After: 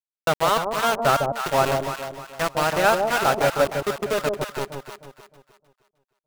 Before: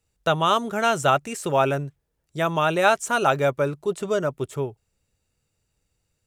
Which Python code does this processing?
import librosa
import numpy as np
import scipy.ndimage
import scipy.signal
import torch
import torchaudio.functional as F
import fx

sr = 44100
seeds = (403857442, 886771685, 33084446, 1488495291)

y = fx.env_lowpass_down(x, sr, base_hz=2600.0, full_db=-19.5)
y = np.where(np.abs(y) >= 10.0 ** (-20.5 / 20.0), y, 0.0)
y = fx.echo_alternate(y, sr, ms=154, hz=840.0, feedback_pct=59, wet_db=-2.5)